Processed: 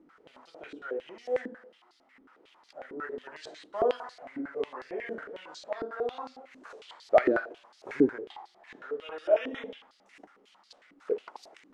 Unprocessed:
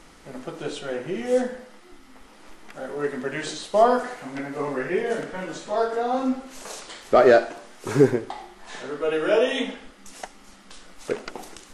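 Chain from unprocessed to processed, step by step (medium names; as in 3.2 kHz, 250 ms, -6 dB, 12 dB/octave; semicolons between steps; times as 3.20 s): step-sequenced band-pass 11 Hz 300–4500 Hz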